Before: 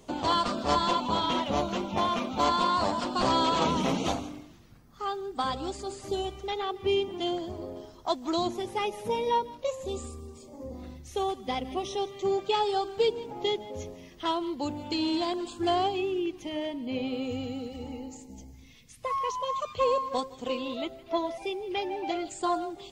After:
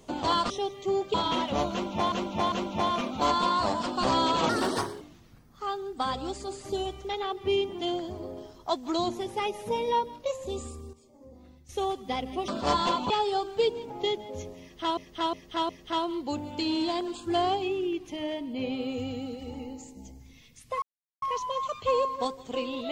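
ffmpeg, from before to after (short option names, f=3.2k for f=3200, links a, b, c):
-filter_complex "[0:a]asplit=15[a][b][c][d][e][f][g][h][i][j][k][l][m][n][o];[a]atrim=end=0.502[p];[b]atrim=start=11.868:end=12.512[q];[c]atrim=start=1.118:end=2.102[r];[d]atrim=start=1.698:end=2.102[s];[e]atrim=start=1.698:end=3.674[t];[f]atrim=start=3.67:end=4.4,asetpts=PTS-STARTPTS,asetrate=61740,aresample=44100[u];[g]atrim=start=4.396:end=10.322[v];[h]atrim=start=10.318:end=11.082,asetpts=PTS-STARTPTS,volume=-10.5dB[w];[i]atrim=start=11.078:end=11.872[x];[j]atrim=start=0.498:end=1.122[y];[k]atrim=start=12.508:end=14.382[z];[l]atrim=start=14.018:end=14.382[aa];[m]atrim=start=14.018:end=14.382[ab];[n]atrim=start=14.018:end=19.15,asetpts=PTS-STARTPTS,afade=t=out:st=5.128:d=0.004:c=hsin,apad=pad_dur=0.4[ac];[o]atrim=start=19.15,asetpts=PTS-STARTPTS,afade=t=in:d=0.004:c=hsin[ad];[p][q]acrossfade=d=0.004:c1=hsin:c2=hsin[ae];[ae][r]acrossfade=d=0.004:c1=hsin:c2=hsin[af];[af][s]acrossfade=d=0.004:c1=hsin:c2=hsin[ag];[ag][t]acrossfade=d=0.004:c1=hsin:c2=hsin[ah];[ah][u]acrossfade=d=0.004:c1=hsin:c2=hsin[ai];[ai][v]acrossfade=d=0.004:c1=hsin:c2=hsin[aj];[aj][w]acrossfade=d=0.004:c1=hsin:c2=hsin[ak];[ak][x]acrossfade=d=0.004:c1=hsin:c2=hsin[al];[al][y]acrossfade=d=0.004:c1=hsin:c2=hsin[am];[am][z]acrossfade=d=0.004:c1=hsin:c2=hsin[an];[an][aa]acrossfade=d=0.004:c1=hsin:c2=hsin[ao];[ao][ab]acrossfade=d=0.004:c1=hsin:c2=hsin[ap];[ac][ad]concat=n=2:v=0:a=1[aq];[ap][aq]acrossfade=d=0.004:c1=hsin:c2=hsin"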